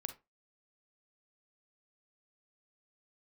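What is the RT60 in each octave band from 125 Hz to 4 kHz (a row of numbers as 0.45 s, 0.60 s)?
0.25 s, 0.25 s, 0.25 s, 0.25 s, 0.20 s, 0.15 s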